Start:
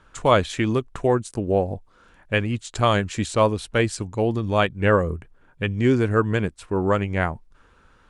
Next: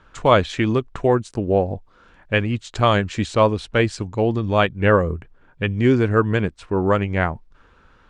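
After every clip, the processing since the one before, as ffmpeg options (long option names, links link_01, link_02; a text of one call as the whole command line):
ffmpeg -i in.wav -af "lowpass=5400,volume=2.5dB" out.wav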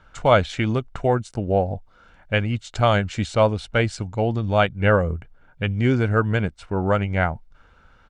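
ffmpeg -i in.wav -af "aecho=1:1:1.4:0.39,volume=-2dB" out.wav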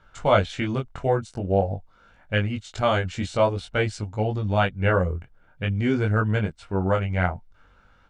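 ffmpeg -i in.wav -af "flanger=delay=19:depth=3.3:speed=0.48" out.wav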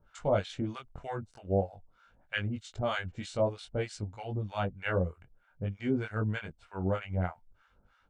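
ffmpeg -i in.wav -filter_complex "[0:a]acrossover=split=800[link_01][link_02];[link_01]aeval=exprs='val(0)*(1-1/2+1/2*cos(2*PI*3.2*n/s))':channel_layout=same[link_03];[link_02]aeval=exprs='val(0)*(1-1/2-1/2*cos(2*PI*3.2*n/s))':channel_layout=same[link_04];[link_03][link_04]amix=inputs=2:normalize=0,volume=-5dB" out.wav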